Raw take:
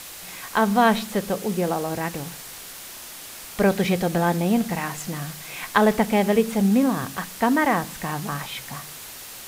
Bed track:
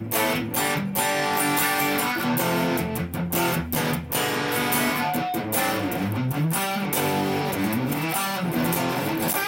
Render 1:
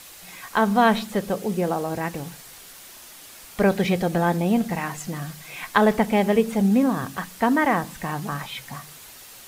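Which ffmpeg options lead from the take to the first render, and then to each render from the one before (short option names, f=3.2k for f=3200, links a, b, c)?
-af "afftdn=nr=6:nf=-39"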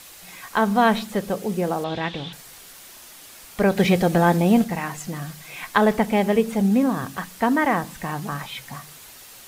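-filter_complex "[0:a]asettb=1/sr,asplit=3[a][b][c];[a]atrim=end=1.844[d];[b]atrim=start=1.84:end=2.33,asetpts=PTS-STARTPTS,afade=t=in:d=0.004:c=qsin,afade=t=out:st=0.486:d=0.004:c=qsin,lowpass=f=3.5k:t=q:w=9.3[e];[c]atrim=start=2.326[f];[d][e]acrossfade=d=0.004:c1=hsin:c2=qsin[g];[g][f]acrossfade=d=0.004:c1=qsin:c2=hsin,asplit=3[h][i][j];[h]atrim=end=3.772[k];[i]atrim=start=3.768:end=4.642,asetpts=PTS-STARTPTS,volume=4dB[l];[j]atrim=start=4.638[m];[k][l]acrossfade=d=0.004:c1=hsin:c2=hsin[n];[n][m]acrossfade=d=0.004:c1=hsin:c2=hsin"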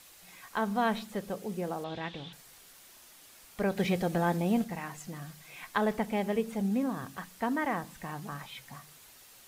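-af "volume=-11dB"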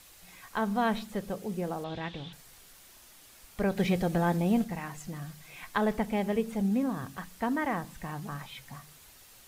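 -af "lowshelf=f=96:g=11.5"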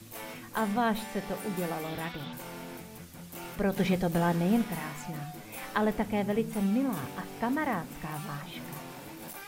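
-filter_complex "[1:a]volume=-19.5dB[a];[0:a][a]amix=inputs=2:normalize=0"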